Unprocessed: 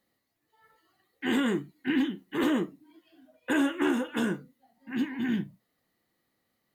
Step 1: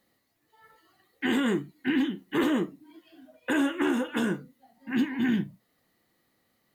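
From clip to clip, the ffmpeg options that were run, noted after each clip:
-af "alimiter=limit=-22.5dB:level=0:latency=1:release=392,volume=5.5dB"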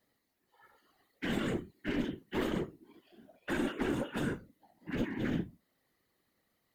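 -af "aeval=exprs='clip(val(0),-1,0.0376)':c=same,afftfilt=real='hypot(re,im)*cos(2*PI*random(0))':imag='hypot(re,im)*sin(2*PI*random(1))':win_size=512:overlap=0.75"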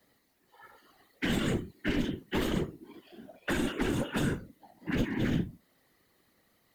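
-filter_complex "[0:a]acrossover=split=160|3000[a][b][c];[b]acompressor=threshold=-38dB:ratio=6[d];[a][d][c]amix=inputs=3:normalize=0,volume=8.5dB"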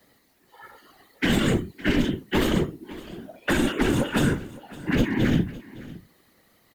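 -af "aecho=1:1:561:0.112,volume=8dB"

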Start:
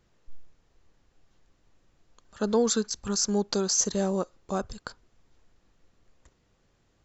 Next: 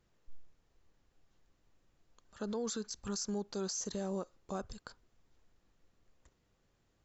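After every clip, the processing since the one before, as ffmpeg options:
-af "alimiter=limit=-22.5dB:level=0:latency=1:release=57,volume=-7dB"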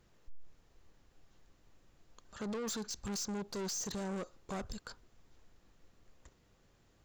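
-af "aeval=exprs='(tanh(141*val(0)+0.2)-tanh(0.2))/141':c=same,volume=7dB"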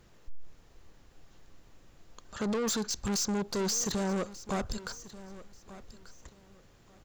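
-af "aecho=1:1:1187|2374:0.141|0.0311,volume=8dB"

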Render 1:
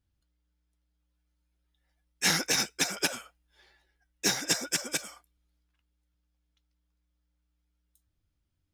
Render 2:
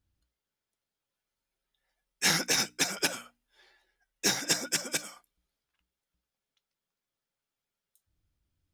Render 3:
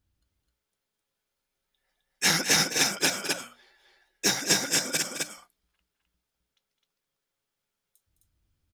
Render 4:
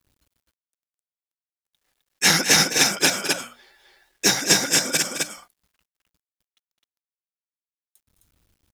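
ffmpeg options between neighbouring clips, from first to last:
-af "bandreject=f=60:t=h:w=6,bandreject=f=120:t=h:w=6,bandreject=f=180:t=h:w=6,bandreject=f=240:t=h:w=6,bandreject=f=300:t=h:w=6"
-af "aecho=1:1:209.9|259.5:0.282|0.708,volume=2.5dB"
-af "acrusher=bits=11:mix=0:aa=0.000001,volume=6dB"

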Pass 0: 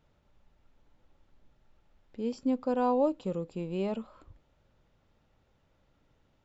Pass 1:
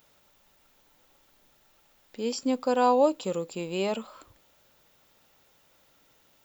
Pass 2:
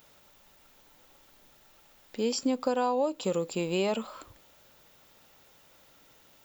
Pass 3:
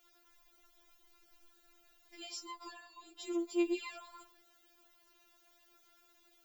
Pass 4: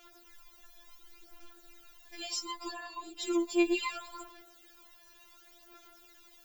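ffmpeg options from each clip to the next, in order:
-af "aemphasis=mode=production:type=riaa,volume=7.5dB"
-af "acompressor=threshold=-28dB:ratio=6,volume=4dB"
-af "afftfilt=real='re*4*eq(mod(b,16),0)':imag='im*4*eq(mod(b,16),0)':win_size=2048:overlap=0.75,volume=-5.5dB"
-af "aphaser=in_gain=1:out_gain=1:delay=1.2:decay=0.53:speed=0.69:type=sinusoidal,volume=8dB"

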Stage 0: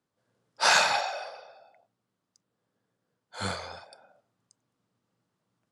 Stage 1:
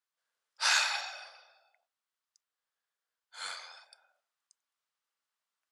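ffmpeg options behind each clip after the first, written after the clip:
-af "highpass=1.4k,volume=-3.5dB"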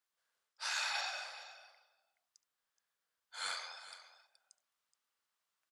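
-af "areverse,acompressor=threshold=-36dB:ratio=10,areverse,aecho=1:1:71|424:0.106|0.188,volume=1.5dB"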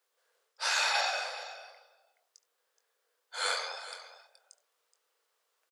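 -filter_complex "[0:a]highpass=f=460:t=q:w=4.9,asplit=2[a][b];[b]adelay=22,volume=-11dB[c];[a][c]amix=inputs=2:normalize=0,volume=7.5dB"

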